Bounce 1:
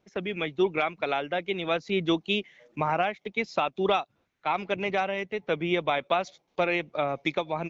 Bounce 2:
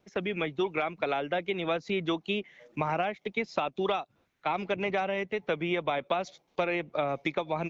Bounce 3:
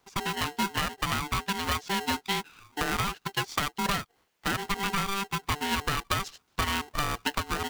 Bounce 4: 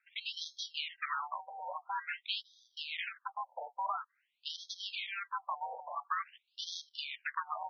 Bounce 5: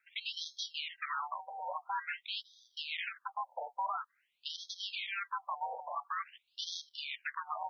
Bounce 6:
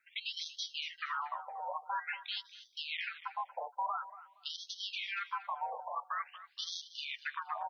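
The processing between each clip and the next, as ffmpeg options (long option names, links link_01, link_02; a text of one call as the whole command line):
ffmpeg -i in.wav -filter_complex "[0:a]acrossover=split=630|2100[link_01][link_02][link_03];[link_01]acompressor=threshold=-32dB:ratio=4[link_04];[link_02]acompressor=threshold=-34dB:ratio=4[link_05];[link_03]acompressor=threshold=-42dB:ratio=4[link_06];[link_04][link_05][link_06]amix=inputs=3:normalize=0,volume=2dB" out.wav
ffmpeg -i in.wav -af "highshelf=frequency=4500:gain=10.5,aeval=exprs='val(0)*sgn(sin(2*PI*590*n/s))':channel_layout=same" out.wav
ffmpeg -i in.wav -af "aeval=exprs='clip(val(0),-1,0.0531)':channel_layout=same,afftfilt=real='re*between(b*sr/1024,660*pow(4600/660,0.5+0.5*sin(2*PI*0.48*pts/sr))/1.41,660*pow(4600/660,0.5+0.5*sin(2*PI*0.48*pts/sr))*1.41)':imag='im*between(b*sr/1024,660*pow(4600/660,0.5+0.5*sin(2*PI*0.48*pts/sr))/1.41,660*pow(4600/660,0.5+0.5*sin(2*PI*0.48*pts/sr))*1.41)':win_size=1024:overlap=0.75,volume=-2dB" out.wav
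ffmpeg -i in.wav -af "alimiter=level_in=5.5dB:limit=-24dB:level=0:latency=1:release=108,volume=-5.5dB,volume=2dB" out.wav
ffmpeg -i in.wav -af "aecho=1:1:235|470:0.178|0.0356" out.wav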